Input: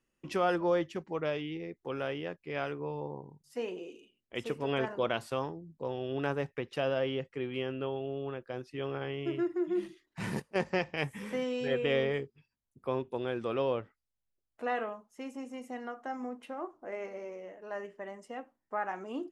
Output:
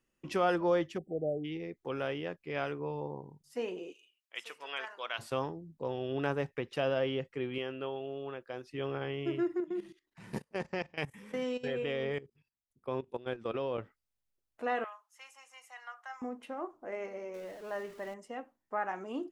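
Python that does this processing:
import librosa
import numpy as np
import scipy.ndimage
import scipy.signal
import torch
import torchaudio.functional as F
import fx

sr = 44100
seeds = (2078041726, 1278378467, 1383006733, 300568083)

y = fx.spec_erase(x, sr, start_s=0.98, length_s=0.46, low_hz=790.0, high_hz=7500.0)
y = fx.highpass(y, sr, hz=1200.0, slope=12, at=(3.92, 5.18), fade=0.02)
y = fx.low_shelf(y, sr, hz=270.0, db=-9.5, at=(7.58, 8.64))
y = fx.level_steps(y, sr, step_db=17, at=(9.6, 13.78))
y = fx.highpass(y, sr, hz=970.0, slope=24, at=(14.84, 16.22))
y = fx.zero_step(y, sr, step_db=-49.0, at=(17.34, 18.14))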